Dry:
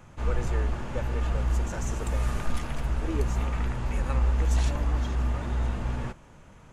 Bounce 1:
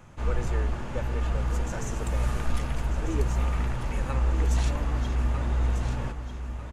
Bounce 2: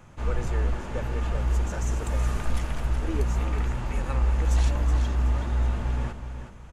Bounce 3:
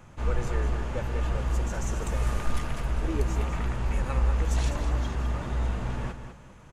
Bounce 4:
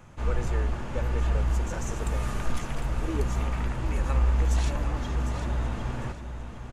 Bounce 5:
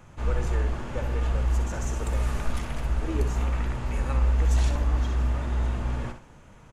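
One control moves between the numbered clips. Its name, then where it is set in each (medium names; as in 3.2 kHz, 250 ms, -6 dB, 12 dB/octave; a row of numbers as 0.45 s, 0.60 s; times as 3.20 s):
feedback delay, time: 1245 ms, 372 ms, 201 ms, 753 ms, 63 ms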